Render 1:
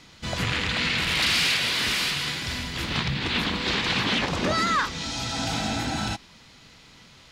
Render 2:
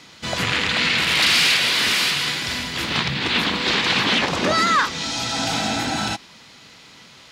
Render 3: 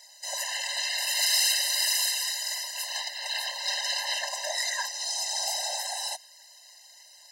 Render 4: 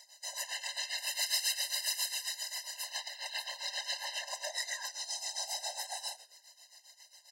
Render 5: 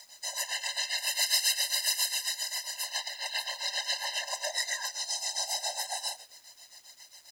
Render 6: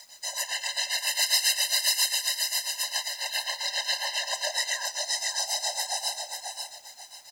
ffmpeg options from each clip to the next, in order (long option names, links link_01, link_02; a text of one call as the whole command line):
ffmpeg -i in.wav -af "highpass=frequency=220:poles=1,volume=6dB" out.wav
ffmpeg -i in.wav -af "aexciter=amount=6.2:drive=3.4:freq=4600,afftfilt=real='hypot(re,im)*cos(2*PI*random(0))':imag='hypot(re,im)*sin(2*PI*random(1))':win_size=512:overlap=0.75,afftfilt=real='re*eq(mod(floor(b*sr/1024/530),2),1)':imag='im*eq(mod(floor(b*sr/1024/530),2),1)':win_size=1024:overlap=0.75,volume=-4dB" out.wav
ffmpeg -i in.wav -filter_complex "[0:a]asplit=4[link_01][link_02][link_03][link_04];[link_02]adelay=82,afreqshift=-82,volume=-21dB[link_05];[link_03]adelay=164,afreqshift=-164,volume=-29.9dB[link_06];[link_04]adelay=246,afreqshift=-246,volume=-38.7dB[link_07];[link_01][link_05][link_06][link_07]amix=inputs=4:normalize=0,tremolo=f=7.4:d=0.79,asplit=2[link_08][link_09];[link_09]acompressor=threshold=-38dB:ratio=6,volume=-3dB[link_10];[link_08][link_10]amix=inputs=2:normalize=0,volume=-7dB" out.wav
ffmpeg -i in.wav -af "acrusher=bits=10:mix=0:aa=0.000001,volume=5.5dB" out.wav
ffmpeg -i in.wav -af "aecho=1:1:537|1074|1611:0.562|0.146|0.038,volume=2.5dB" out.wav